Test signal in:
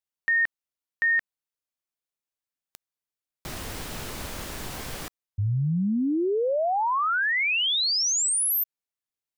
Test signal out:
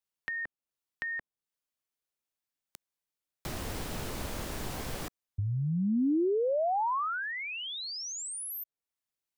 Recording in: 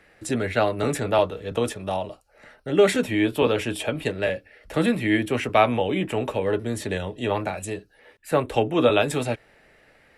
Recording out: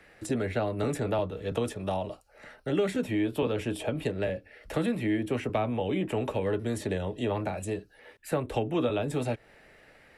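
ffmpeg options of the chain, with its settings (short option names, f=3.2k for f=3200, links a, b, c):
-filter_complex "[0:a]acrossover=split=280|940[a][b][c];[a]acompressor=threshold=-31dB:ratio=4[d];[b]acompressor=threshold=-30dB:ratio=4[e];[c]acompressor=threshold=-41dB:ratio=4[f];[d][e][f]amix=inputs=3:normalize=0"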